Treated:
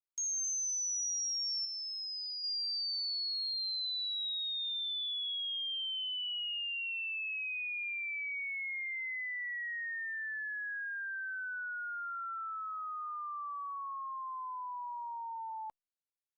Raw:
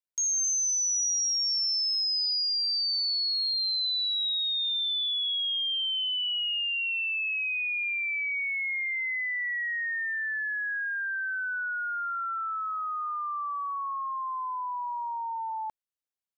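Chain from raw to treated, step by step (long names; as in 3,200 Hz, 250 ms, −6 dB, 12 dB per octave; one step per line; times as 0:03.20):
0:01.65–0:02.44: high-shelf EQ 4,800 Hz −9 dB
level −8 dB
Opus 96 kbit/s 48,000 Hz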